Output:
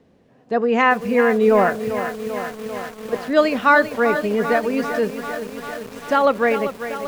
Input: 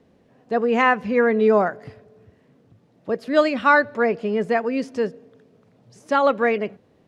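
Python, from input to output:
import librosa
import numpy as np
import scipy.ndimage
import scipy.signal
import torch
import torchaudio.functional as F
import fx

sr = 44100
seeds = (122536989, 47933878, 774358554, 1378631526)

y = fx.transient(x, sr, attack_db=-10, sustain_db=5, at=(1.48, 3.13))
y = fx.echo_crushed(y, sr, ms=393, feedback_pct=80, bits=6, wet_db=-10.0)
y = y * librosa.db_to_amplitude(1.5)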